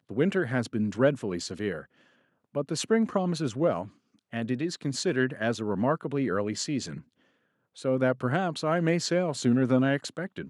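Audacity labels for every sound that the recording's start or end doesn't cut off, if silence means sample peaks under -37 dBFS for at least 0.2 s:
2.550000	3.870000	sound
4.330000	6.990000	sound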